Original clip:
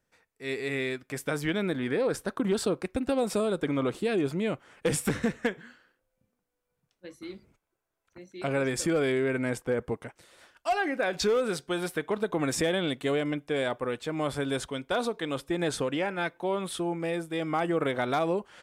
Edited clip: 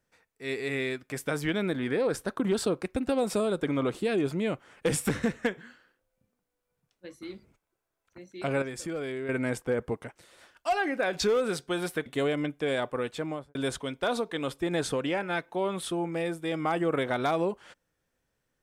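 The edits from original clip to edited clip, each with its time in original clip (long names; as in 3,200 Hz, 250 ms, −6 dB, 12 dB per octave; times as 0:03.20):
0:08.62–0:09.29: clip gain −8 dB
0:12.06–0:12.94: remove
0:14.05–0:14.43: fade out and dull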